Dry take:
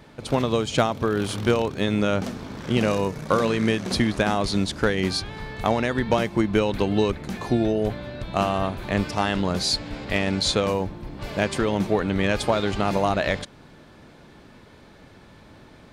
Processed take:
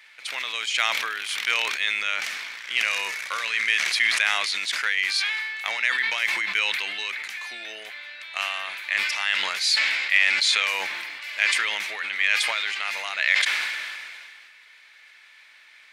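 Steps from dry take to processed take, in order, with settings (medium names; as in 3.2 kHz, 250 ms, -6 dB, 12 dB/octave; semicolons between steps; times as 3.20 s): resonant high-pass 2.1 kHz, resonance Q 3.3; decay stretcher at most 27 dB/s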